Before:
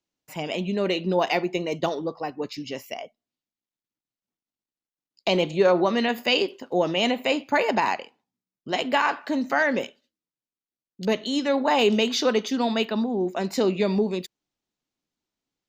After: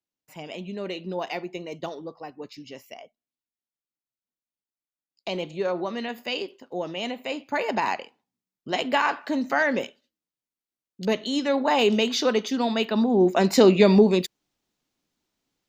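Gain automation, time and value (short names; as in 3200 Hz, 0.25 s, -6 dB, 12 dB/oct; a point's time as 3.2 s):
7.25 s -8 dB
8 s -0.5 dB
12.81 s -0.5 dB
13.22 s +7 dB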